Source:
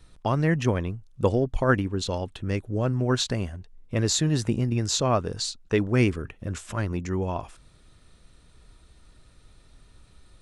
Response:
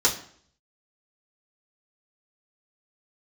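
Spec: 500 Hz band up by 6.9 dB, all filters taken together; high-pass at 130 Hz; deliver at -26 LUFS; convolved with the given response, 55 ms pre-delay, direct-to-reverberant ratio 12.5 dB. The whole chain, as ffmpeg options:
-filter_complex "[0:a]highpass=130,equalizer=f=500:t=o:g=8.5,asplit=2[s0][s1];[1:a]atrim=start_sample=2205,adelay=55[s2];[s1][s2]afir=irnorm=-1:irlink=0,volume=0.0501[s3];[s0][s3]amix=inputs=2:normalize=0,volume=0.708"

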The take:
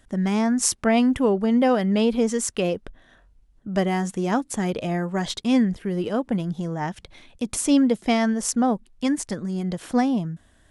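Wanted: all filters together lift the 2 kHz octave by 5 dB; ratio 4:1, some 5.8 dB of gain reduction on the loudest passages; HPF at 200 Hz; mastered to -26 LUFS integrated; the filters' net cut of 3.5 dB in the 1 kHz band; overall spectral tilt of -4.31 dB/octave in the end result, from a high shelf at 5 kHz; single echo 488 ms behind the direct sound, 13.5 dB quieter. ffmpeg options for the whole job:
-af "highpass=200,equalizer=f=1000:t=o:g=-7,equalizer=f=2000:t=o:g=8.5,highshelf=f=5000:g=-4,acompressor=threshold=0.0708:ratio=4,aecho=1:1:488:0.211,volume=1.26"

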